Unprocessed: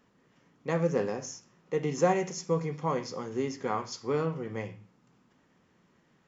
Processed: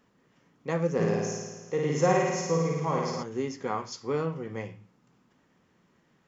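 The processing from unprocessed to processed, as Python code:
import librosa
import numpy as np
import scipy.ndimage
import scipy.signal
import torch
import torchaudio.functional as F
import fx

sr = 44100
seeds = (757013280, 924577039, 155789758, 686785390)

y = fx.room_flutter(x, sr, wall_m=9.3, rt60_s=1.3, at=(0.99, 3.22), fade=0.02)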